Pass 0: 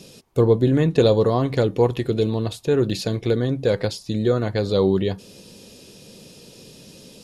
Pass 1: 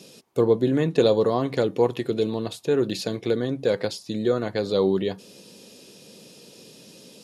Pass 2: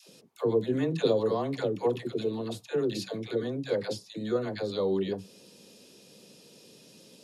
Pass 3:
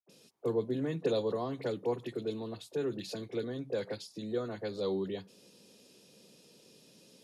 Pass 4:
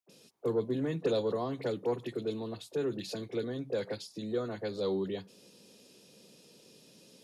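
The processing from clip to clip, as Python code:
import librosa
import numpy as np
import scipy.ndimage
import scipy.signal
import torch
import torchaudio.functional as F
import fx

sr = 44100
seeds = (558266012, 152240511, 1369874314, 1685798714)

y1 = scipy.signal.sosfilt(scipy.signal.butter(2, 180.0, 'highpass', fs=sr, output='sos'), x)
y1 = y1 * 10.0 ** (-2.0 / 20.0)
y2 = fx.dispersion(y1, sr, late='lows', ms=88.0, hz=550.0)
y2 = y2 * 10.0 ** (-6.5 / 20.0)
y3 = fx.dispersion(y2, sr, late='highs', ms=97.0, hz=1000.0)
y3 = y3 * 10.0 ** (-5.5 / 20.0)
y4 = 10.0 ** (-19.5 / 20.0) * np.tanh(y3 / 10.0 ** (-19.5 / 20.0))
y4 = y4 * 10.0 ** (1.5 / 20.0)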